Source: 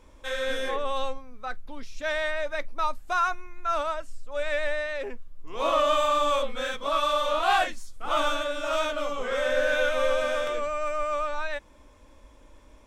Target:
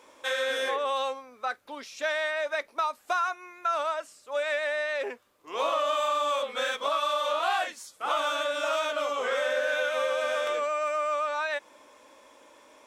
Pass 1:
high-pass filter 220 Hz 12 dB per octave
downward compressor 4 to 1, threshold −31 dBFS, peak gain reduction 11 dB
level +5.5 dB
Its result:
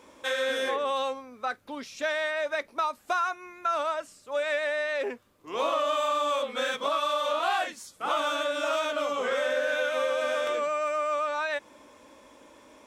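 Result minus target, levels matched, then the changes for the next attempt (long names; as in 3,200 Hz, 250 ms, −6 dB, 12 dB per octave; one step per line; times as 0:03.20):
250 Hz band +6.5 dB
change: high-pass filter 440 Hz 12 dB per octave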